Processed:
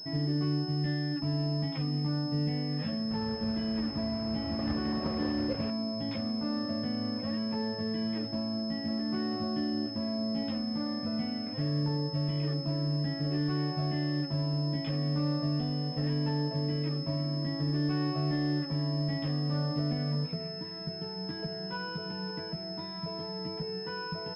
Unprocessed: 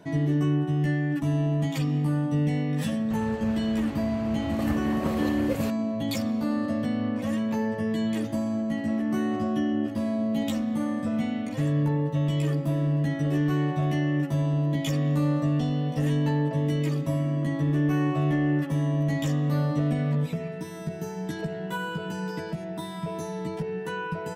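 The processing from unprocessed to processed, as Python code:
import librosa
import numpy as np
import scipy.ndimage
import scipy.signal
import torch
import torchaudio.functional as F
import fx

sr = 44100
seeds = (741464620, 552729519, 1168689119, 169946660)

y = fx.pwm(x, sr, carrier_hz=5200.0)
y = F.gain(torch.from_numpy(y), -6.0).numpy()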